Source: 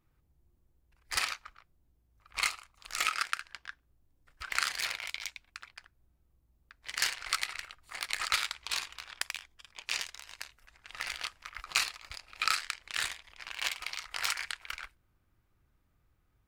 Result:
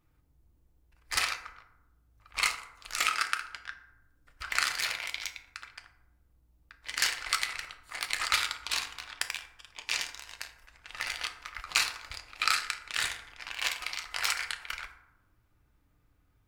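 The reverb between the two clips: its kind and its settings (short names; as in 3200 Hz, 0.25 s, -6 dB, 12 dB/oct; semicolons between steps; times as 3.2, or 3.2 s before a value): FDN reverb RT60 0.92 s, low-frequency decay 1×, high-frequency decay 0.45×, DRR 6 dB; gain +2 dB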